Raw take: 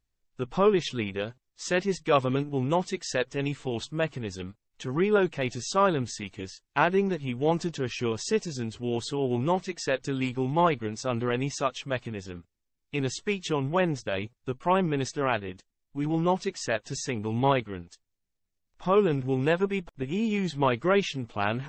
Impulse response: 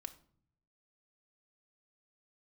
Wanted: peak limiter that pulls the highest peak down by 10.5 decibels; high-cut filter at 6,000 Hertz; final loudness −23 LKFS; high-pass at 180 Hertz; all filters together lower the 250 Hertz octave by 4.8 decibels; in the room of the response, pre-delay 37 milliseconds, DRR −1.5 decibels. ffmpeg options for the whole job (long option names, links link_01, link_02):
-filter_complex "[0:a]highpass=180,lowpass=6000,equalizer=frequency=250:width_type=o:gain=-5,alimiter=limit=-18dB:level=0:latency=1,asplit=2[link_01][link_02];[1:a]atrim=start_sample=2205,adelay=37[link_03];[link_02][link_03]afir=irnorm=-1:irlink=0,volume=5.5dB[link_04];[link_01][link_04]amix=inputs=2:normalize=0,volume=6dB"